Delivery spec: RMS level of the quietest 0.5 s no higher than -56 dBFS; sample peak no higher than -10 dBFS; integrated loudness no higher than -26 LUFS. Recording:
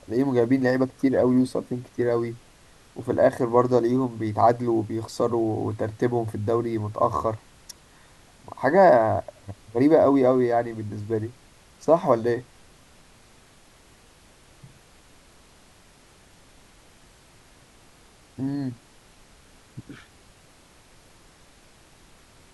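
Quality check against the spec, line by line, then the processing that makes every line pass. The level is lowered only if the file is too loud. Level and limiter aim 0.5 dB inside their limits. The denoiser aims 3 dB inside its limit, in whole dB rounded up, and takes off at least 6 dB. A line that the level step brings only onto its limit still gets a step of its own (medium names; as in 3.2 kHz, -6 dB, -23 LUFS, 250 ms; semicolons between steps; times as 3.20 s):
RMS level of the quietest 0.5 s -54 dBFS: fail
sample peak -5.0 dBFS: fail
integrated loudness -23.0 LUFS: fail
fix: trim -3.5 dB; peak limiter -10.5 dBFS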